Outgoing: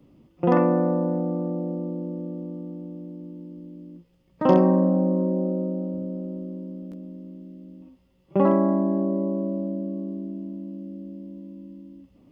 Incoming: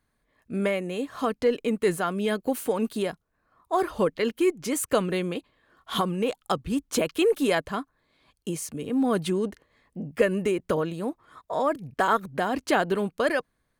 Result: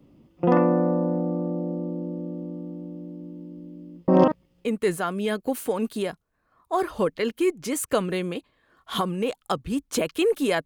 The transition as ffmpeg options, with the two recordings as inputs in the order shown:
-filter_complex "[0:a]apad=whole_dur=10.65,atrim=end=10.65,asplit=2[a][b];[a]atrim=end=4.082[c];[b]atrim=start=4.078:end=4.652,asetpts=PTS-STARTPTS,areverse[d];[1:a]atrim=start=1.648:end=7.65[e];[c][d]acrossfade=d=0.004:c1=hsin:c2=hsin[f];[f][e]acrossfade=d=0.004:c1=hsin:c2=hsin"

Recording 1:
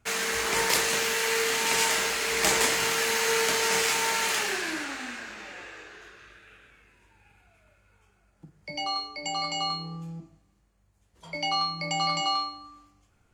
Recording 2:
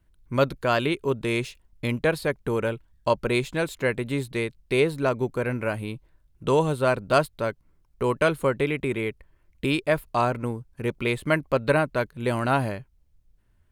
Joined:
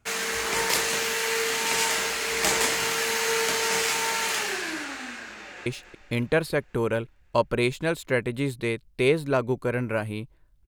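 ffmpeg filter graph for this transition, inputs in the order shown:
-filter_complex "[0:a]apad=whole_dur=10.67,atrim=end=10.67,atrim=end=5.662[a];[1:a]atrim=start=1.378:end=6.39[b];[a][b]acrossfade=d=0.004:c1=hsin:c2=hsin,asplit=2[c][d];[d]afade=t=in:st=5.28:d=0.01,afade=t=out:st=5.66:d=0.01,aecho=0:1:280|560|840|1120|1400|1680|1960:0.334965|0.200979|0.120588|0.0723525|0.0434115|0.0260469|0.0156281[e];[c][e]amix=inputs=2:normalize=0"

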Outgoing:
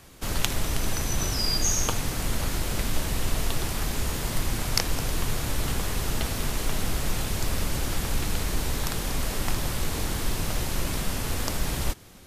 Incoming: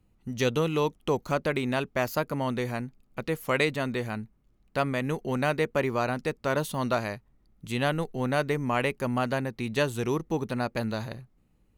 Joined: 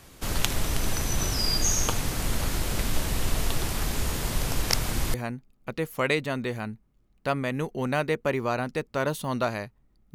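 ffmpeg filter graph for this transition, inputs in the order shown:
-filter_complex "[0:a]apad=whole_dur=10.14,atrim=end=10.14,asplit=2[a][b];[a]atrim=end=4.372[c];[b]atrim=start=4.368:end=5.142,asetpts=PTS-STARTPTS,areverse[d];[1:a]atrim=start=2.638:end=7.64[e];[c][d]acrossfade=d=0.004:c1=hsin:c2=hsin[f];[f][e]acrossfade=d=0.004:c1=hsin:c2=hsin"

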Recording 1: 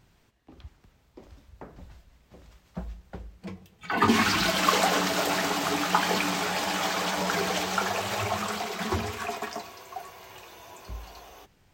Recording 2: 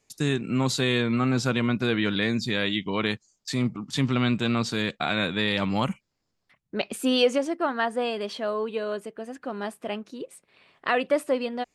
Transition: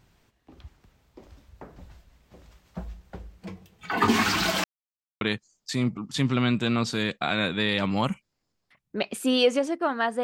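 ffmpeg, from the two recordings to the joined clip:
-filter_complex "[0:a]apad=whole_dur=10.23,atrim=end=10.23,asplit=2[a][b];[a]atrim=end=4.64,asetpts=PTS-STARTPTS,afade=t=out:st=4.636:d=0.004:c=hsin[c];[b]atrim=start=4.64:end=5.21,asetpts=PTS-STARTPTS,volume=0[d];[1:a]atrim=start=3:end=8.02,asetpts=PTS-STARTPTS,afade=t=in:d=0.004:c=hsin[e];[c][d][e]concat=n=3:v=0:a=1"

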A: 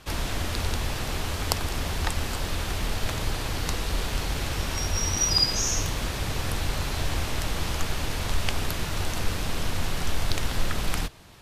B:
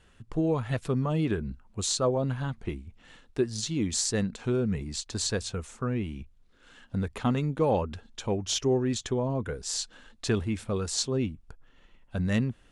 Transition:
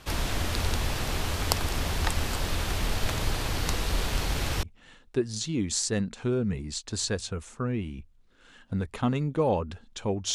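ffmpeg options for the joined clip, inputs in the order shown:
-filter_complex "[0:a]apad=whole_dur=10.34,atrim=end=10.34,atrim=end=4.632[a];[1:a]atrim=start=2.848:end=8.56[b];[a][b]acrossfade=d=0.004:c1=hsin:c2=hsin"

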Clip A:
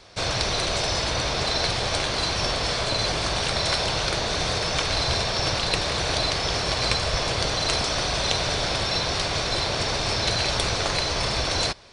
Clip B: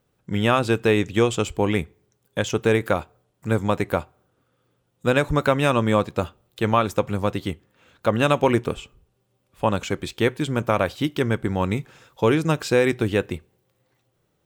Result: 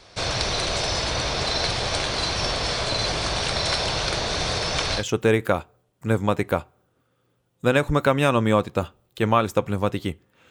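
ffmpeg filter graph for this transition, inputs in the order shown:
-filter_complex "[0:a]apad=whole_dur=10.5,atrim=end=10.5,atrim=end=5.04,asetpts=PTS-STARTPTS[a];[1:a]atrim=start=2.35:end=7.91,asetpts=PTS-STARTPTS[b];[a][b]acrossfade=d=0.1:c1=tri:c2=tri"

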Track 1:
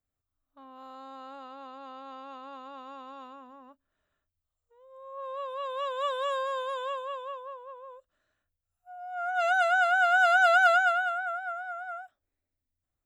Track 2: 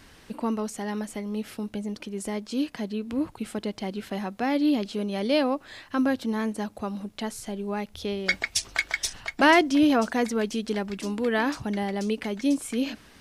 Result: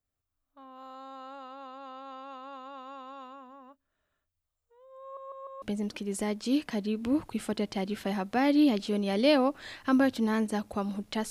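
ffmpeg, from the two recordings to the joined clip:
-filter_complex "[0:a]apad=whole_dur=11.3,atrim=end=11.3,asplit=4[a][b][c][d];[a]atrim=end=5.172[e];[b]atrim=start=5.018:end=5.172[f];[c]atrim=start=5.018:end=5.172[g];[d]atrim=start=5.018:end=5.172[h];[1:a]atrim=start=1.678:end=7.36[i];[e][f]acrossfade=d=0.004:c1=hsin:c2=hsin[j];[j][g]acrossfade=d=0.004:c1=hsin:c2=hsin[k];[k][h]acrossfade=d=0.004:c1=hsin:c2=hsin[l];[l][i]acrossfade=d=0.004:c1=hsin:c2=hsin"

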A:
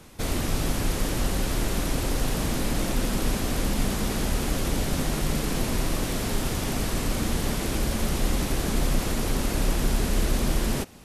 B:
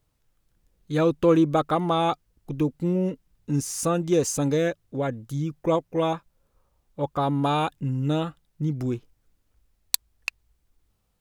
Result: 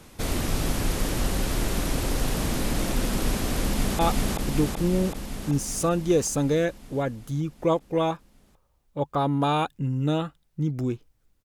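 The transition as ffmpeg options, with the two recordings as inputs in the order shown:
-filter_complex "[0:a]apad=whole_dur=11.44,atrim=end=11.44,atrim=end=3.992[a];[1:a]atrim=start=2.008:end=9.46[b];[a][b]acrossfade=d=0.004:c1=hsin:c2=hsin,asplit=2[c][d];[d]afade=t=in:st=3.62:d=0.01,afade=t=out:st=3.99:d=0.01,aecho=0:1:380|760|1140|1520|1900|2280|2660|3040|3420|3800|4180|4560:1|0.7|0.49|0.343|0.2401|0.16807|0.117649|0.0823543|0.057648|0.0403536|0.0282475|0.0197733[e];[c][e]amix=inputs=2:normalize=0"

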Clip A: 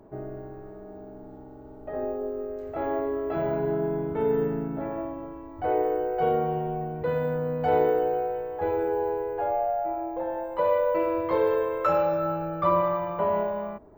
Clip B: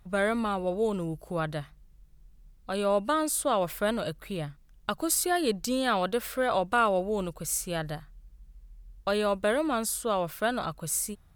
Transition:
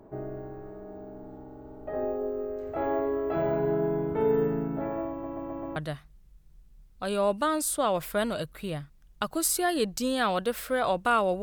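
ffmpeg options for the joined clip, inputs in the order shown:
-filter_complex "[0:a]apad=whole_dur=11.42,atrim=end=11.42,asplit=5[a][b][c][d][e];[a]atrim=end=5.242[f];[b]atrim=start=5.108:end=5.242[g];[c]atrim=start=5.108:end=5.242[h];[d]atrim=start=5.108:end=5.242[i];[e]atrim=start=5.108:end=5.242[j];[1:a]atrim=start=1.428:end=7.09[k];[f][g]acrossfade=d=0.004:c1=hsin:c2=hsin[l];[l][h]acrossfade=d=0.004:c1=hsin:c2=hsin[m];[m][i]acrossfade=d=0.004:c1=hsin:c2=hsin[n];[n][j]acrossfade=d=0.004:c1=hsin:c2=hsin[o];[o][k]acrossfade=d=0.004:c1=hsin:c2=hsin"

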